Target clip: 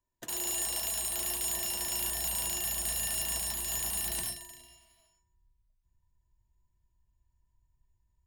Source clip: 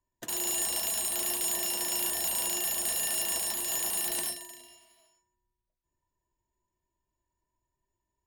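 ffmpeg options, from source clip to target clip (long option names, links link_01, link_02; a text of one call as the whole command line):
ffmpeg -i in.wav -af "asubboost=boost=10:cutoff=120,volume=-2.5dB" out.wav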